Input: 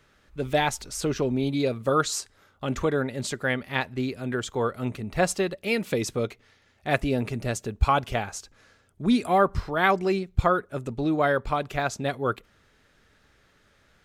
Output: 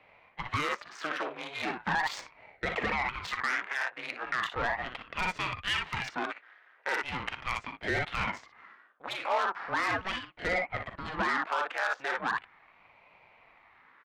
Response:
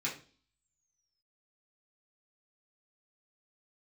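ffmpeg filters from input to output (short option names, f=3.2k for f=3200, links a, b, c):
-af "lowpass=7.3k,equalizer=f=3.3k:w=4.5:g=3,aecho=1:1:41|59:0.282|0.422,adynamicsmooth=sensitivity=3:basefreq=1.7k,equalizer=f=1.6k:w=0.93:g=13,acompressor=threshold=-19dB:ratio=3,asoftclip=type=tanh:threshold=-18.5dB,highpass=f=600:w=0.5412,highpass=f=600:w=1.3066,alimiter=limit=-20dB:level=0:latency=1:release=15,aeval=exprs='val(0)*sin(2*PI*420*n/s+420*0.75/0.38*sin(2*PI*0.38*n/s))':c=same,volume=2dB"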